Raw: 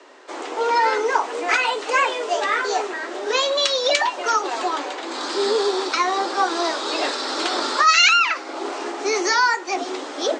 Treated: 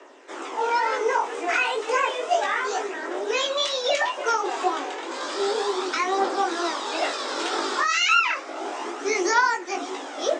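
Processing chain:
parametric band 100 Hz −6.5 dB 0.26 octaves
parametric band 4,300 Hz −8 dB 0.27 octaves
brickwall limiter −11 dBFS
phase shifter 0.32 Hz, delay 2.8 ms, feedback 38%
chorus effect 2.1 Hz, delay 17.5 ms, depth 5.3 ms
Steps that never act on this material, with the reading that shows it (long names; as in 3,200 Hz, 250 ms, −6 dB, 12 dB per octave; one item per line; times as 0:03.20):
parametric band 100 Hz: nothing at its input below 210 Hz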